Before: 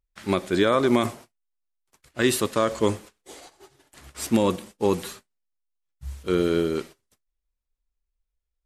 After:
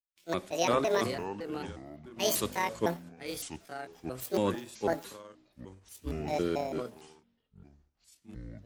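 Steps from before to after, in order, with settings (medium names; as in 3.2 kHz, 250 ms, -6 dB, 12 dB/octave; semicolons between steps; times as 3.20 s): pitch shift switched off and on +9 st, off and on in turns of 168 ms; ever faster or slower copies 278 ms, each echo -5 st, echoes 3, each echo -6 dB; three bands expanded up and down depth 70%; trim -9 dB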